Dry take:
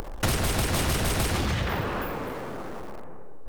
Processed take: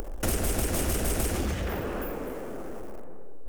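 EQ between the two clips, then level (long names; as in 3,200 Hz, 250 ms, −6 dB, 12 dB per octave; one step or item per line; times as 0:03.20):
octave-band graphic EQ 125/1,000/2,000/4,000 Hz −12/−9/−5/−11 dB
+2.0 dB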